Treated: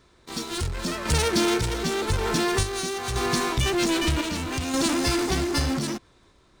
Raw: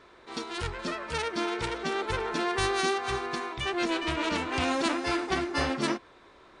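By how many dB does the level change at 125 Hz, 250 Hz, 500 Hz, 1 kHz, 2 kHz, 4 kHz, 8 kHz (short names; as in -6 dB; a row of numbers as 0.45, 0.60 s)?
+11.5, +6.0, +3.5, +1.0, +1.5, +6.0, +11.5 dB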